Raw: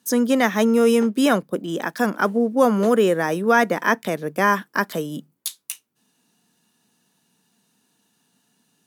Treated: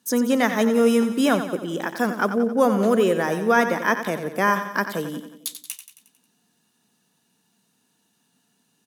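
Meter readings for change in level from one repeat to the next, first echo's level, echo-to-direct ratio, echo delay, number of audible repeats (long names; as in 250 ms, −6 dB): −5.5 dB, −10.0 dB, −8.5 dB, 90 ms, 5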